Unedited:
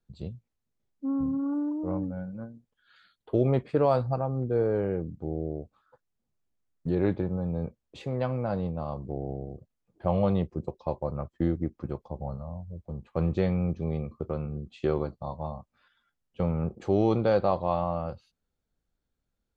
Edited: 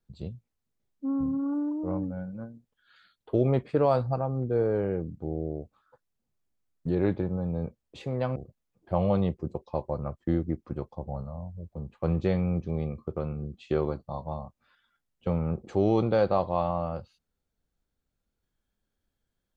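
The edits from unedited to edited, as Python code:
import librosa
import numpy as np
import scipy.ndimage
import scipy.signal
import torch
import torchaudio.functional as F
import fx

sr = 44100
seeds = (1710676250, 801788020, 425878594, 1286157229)

y = fx.edit(x, sr, fx.cut(start_s=8.36, length_s=1.13), tone=tone)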